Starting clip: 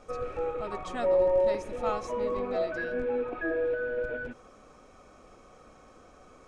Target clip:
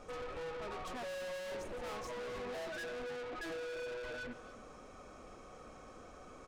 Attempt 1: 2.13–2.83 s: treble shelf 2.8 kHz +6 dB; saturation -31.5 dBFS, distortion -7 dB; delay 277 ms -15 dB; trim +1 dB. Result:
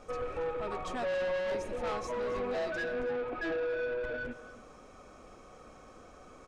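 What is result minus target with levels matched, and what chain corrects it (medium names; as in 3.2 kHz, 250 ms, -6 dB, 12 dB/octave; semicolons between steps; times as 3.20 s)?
saturation: distortion -5 dB
2.13–2.83 s: treble shelf 2.8 kHz +6 dB; saturation -42.5 dBFS, distortion -3 dB; delay 277 ms -15 dB; trim +1 dB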